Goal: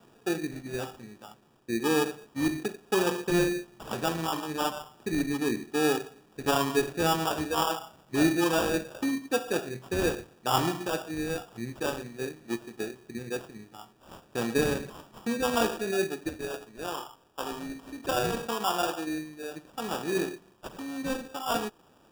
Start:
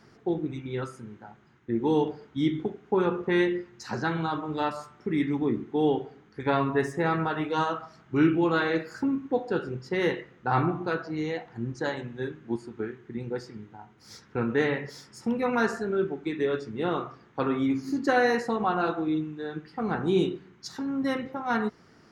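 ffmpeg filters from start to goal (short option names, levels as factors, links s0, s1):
-af "asetnsamples=n=441:p=0,asendcmd='16.29 highpass f 1200;18.37 highpass f 530',highpass=f=230:p=1,acrusher=samples=21:mix=1:aa=0.000001"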